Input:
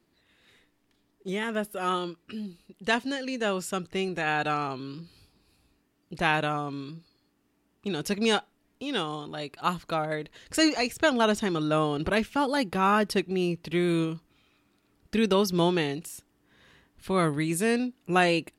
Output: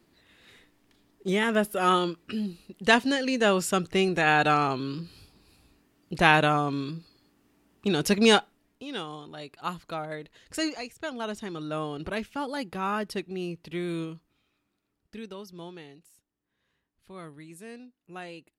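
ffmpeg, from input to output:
ffmpeg -i in.wav -af "volume=12dB,afade=type=out:start_time=8.32:duration=0.53:silence=0.281838,afade=type=out:start_time=10.55:duration=0.38:silence=0.421697,afade=type=in:start_time=10.93:duration=0.94:silence=0.473151,afade=type=out:start_time=14.11:duration=1.24:silence=0.251189" out.wav

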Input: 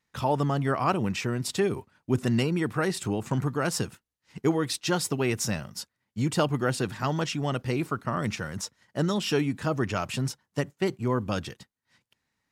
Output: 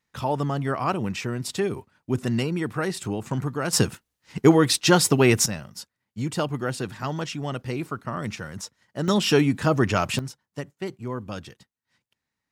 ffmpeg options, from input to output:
ffmpeg -i in.wav -af "asetnsamples=nb_out_samples=441:pad=0,asendcmd='3.73 volume volume 9dB;5.46 volume volume -1.5dB;9.08 volume volume 6.5dB;10.19 volume volume -5dB',volume=0dB" out.wav

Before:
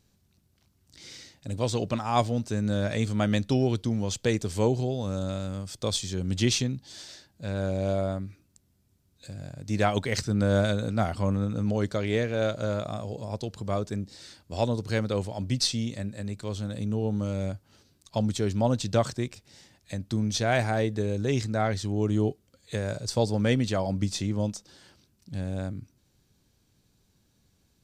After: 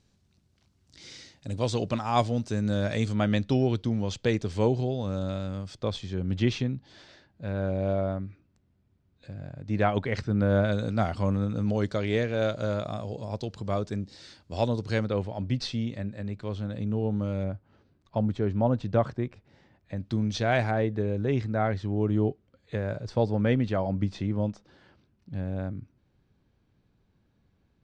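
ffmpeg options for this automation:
ffmpeg -i in.wav -af "asetnsamples=nb_out_samples=441:pad=0,asendcmd='3.14 lowpass f 4100;5.82 lowpass f 2400;10.72 lowpass f 5400;15.06 lowpass f 2800;17.44 lowpass f 1700;19.97 lowpass f 3700;20.71 lowpass f 2200',lowpass=6700" out.wav

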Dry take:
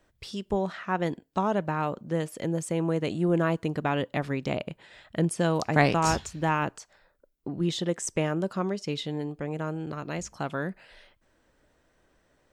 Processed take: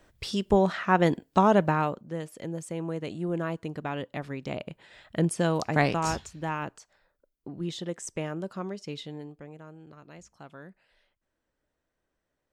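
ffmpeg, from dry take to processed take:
ffmpeg -i in.wav -af "volume=12.5dB,afade=type=out:start_time=1.63:duration=0.4:silence=0.251189,afade=type=in:start_time=4.38:duration=0.88:silence=0.473151,afade=type=out:start_time=5.26:duration=1.06:silence=0.473151,afade=type=out:start_time=8.98:duration=0.63:silence=0.354813" out.wav

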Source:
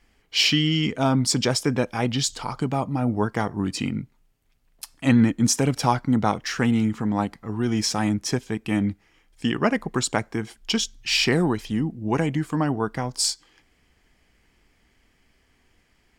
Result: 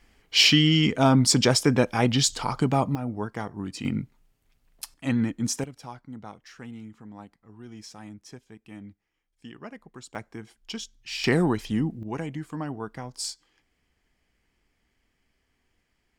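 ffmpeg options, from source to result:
ffmpeg -i in.wav -af "asetnsamples=nb_out_samples=441:pad=0,asendcmd='2.95 volume volume -8dB;3.85 volume volume 0dB;4.94 volume volume -7.5dB;5.64 volume volume -20dB;10.15 volume volume -12dB;11.24 volume volume -1dB;12.03 volume volume -9.5dB',volume=2dB" out.wav

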